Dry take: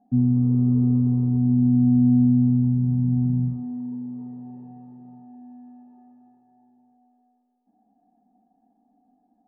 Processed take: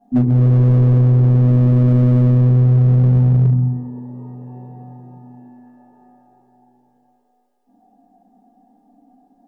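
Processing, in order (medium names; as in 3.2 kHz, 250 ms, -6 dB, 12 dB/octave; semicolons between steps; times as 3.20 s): bass shelf 190 Hz -7 dB; simulated room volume 51 m³, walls mixed, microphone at 2.7 m; overload inside the chain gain 10 dB; trim +1 dB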